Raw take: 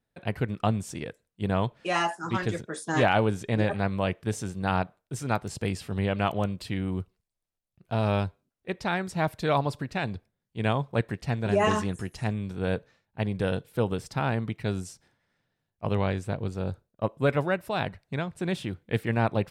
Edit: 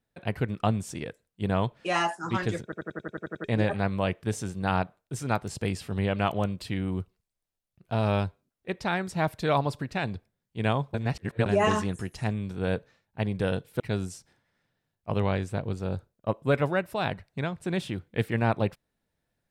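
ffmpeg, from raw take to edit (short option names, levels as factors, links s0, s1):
-filter_complex "[0:a]asplit=13[s0][s1][s2][s3][s4][s5][s6][s7][s8][s9][s10][s11][s12];[s0]atrim=end=2.722[s13];[s1]atrim=start=2.628:end=2.722[s14];[s2]atrim=start=2.628:end=2.722[s15];[s3]atrim=start=2.628:end=2.722[s16];[s4]atrim=start=2.628:end=2.722[s17];[s5]atrim=start=2.628:end=2.722[s18];[s6]atrim=start=2.628:end=2.722[s19];[s7]atrim=start=2.628:end=2.722[s20];[s8]atrim=start=2.628:end=2.722[s21];[s9]atrim=start=3.438:end=10.942[s22];[s10]atrim=start=10.938:end=11.462,asetpts=PTS-STARTPTS,areverse[s23];[s11]atrim=start=11.458:end=13.802[s24];[s12]atrim=start=14.548[s25];[s13][s14]acrossfade=d=0.004:c1=hsin:c2=hsin[s26];[s26][s15]acrossfade=d=0.004:c1=hsin:c2=hsin[s27];[s27][s16]acrossfade=d=0.004:c1=hsin:c2=hsin[s28];[s28][s17]acrossfade=d=0.004:c1=hsin:c2=hsin[s29];[s29][s18]acrossfade=d=0.004:c1=hsin:c2=hsin[s30];[s30][s19]acrossfade=d=0.004:c1=hsin:c2=hsin[s31];[s31][s20]acrossfade=d=0.004:c1=hsin:c2=hsin[s32];[s32][s21]acrossfade=d=0.004:c1=hsin:c2=hsin[s33];[s33][s22]acrossfade=d=0.004:c1=hsin:c2=hsin[s34];[s34][s23]acrossfade=d=0.004:c1=hsin:c2=hsin[s35];[s35][s24]acrossfade=d=0.004:c1=hsin:c2=hsin[s36];[s36][s25]acrossfade=d=0.004:c1=hsin:c2=hsin"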